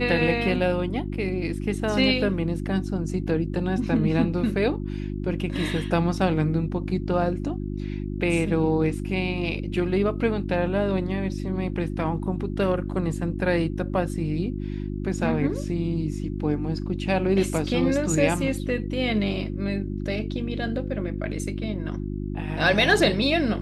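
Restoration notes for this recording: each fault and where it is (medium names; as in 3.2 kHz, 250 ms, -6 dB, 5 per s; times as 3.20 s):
hum 50 Hz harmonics 7 -30 dBFS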